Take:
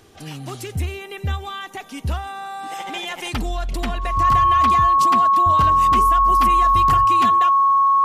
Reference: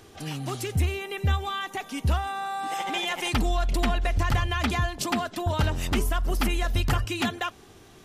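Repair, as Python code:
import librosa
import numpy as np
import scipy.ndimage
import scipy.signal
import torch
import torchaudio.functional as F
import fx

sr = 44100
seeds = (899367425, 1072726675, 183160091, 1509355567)

y = fx.notch(x, sr, hz=1100.0, q=30.0)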